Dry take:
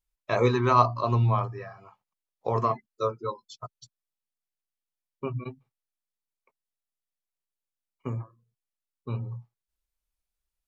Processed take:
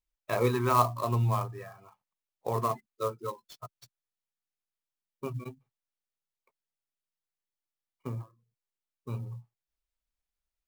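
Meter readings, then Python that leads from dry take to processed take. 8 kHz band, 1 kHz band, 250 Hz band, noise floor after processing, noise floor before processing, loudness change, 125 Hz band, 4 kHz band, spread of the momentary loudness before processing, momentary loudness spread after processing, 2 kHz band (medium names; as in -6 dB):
no reading, -4.0 dB, -4.0 dB, under -85 dBFS, under -85 dBFS, -4.0 dB, -4.0 dB, -3.5 dB, 22 LU, 22 LU, -4.0 dB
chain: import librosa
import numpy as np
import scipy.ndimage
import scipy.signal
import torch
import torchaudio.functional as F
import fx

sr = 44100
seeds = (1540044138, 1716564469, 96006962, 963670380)

y = fx.clock_jitter(x, sr, seeds[0], jitter_ms=0.022)
y = y * librosa.db_to_amplitude(-4.0)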